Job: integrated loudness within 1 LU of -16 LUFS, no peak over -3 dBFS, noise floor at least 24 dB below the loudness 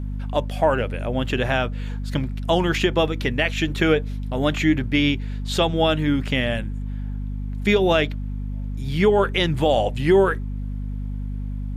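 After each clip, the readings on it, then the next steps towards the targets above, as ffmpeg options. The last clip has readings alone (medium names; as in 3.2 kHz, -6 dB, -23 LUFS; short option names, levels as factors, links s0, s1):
hum 50 Hz; highest harmonic 250 Hz; hum level -25 dBFS; loudness -22.5 LUFS; peak level -7.0 dBFS; loudness target -16.0 LUFS
-> -af "bandreject=f=50:t=h:w=4,bandreject=f=100:t=h:w=4,bandreject=f=150:t=h:w=4,bandreject=f=200:t=h:w=4,bandreject=f=250:t=h:w=4"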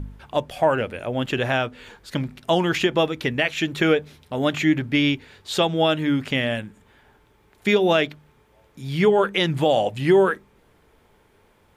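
hum not found; loudness -22.0 LUFS; peak level -7.0 dBFS; loudness target -16.0 LUFS
-> -af "volume=2,alimiter=limit=0.708:level=0:latency=1"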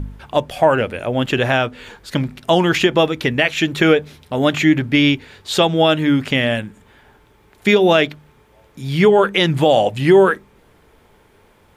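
loudness -16.5 LUFS; peak level -3.0 dBFS; noise floor -53 dBFS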